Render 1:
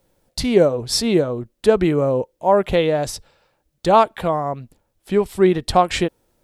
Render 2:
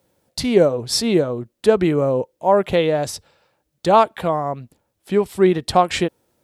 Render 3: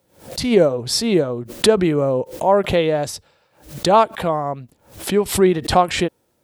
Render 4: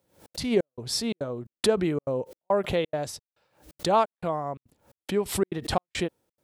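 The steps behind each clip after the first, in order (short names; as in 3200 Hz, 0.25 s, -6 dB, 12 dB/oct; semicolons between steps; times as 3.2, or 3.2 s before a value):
HPF 81 Hz
backwards sustainer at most 130 dB/s
step gate "xxx.xxx..x" 174 bpm -60 dB; gain -8.5 dB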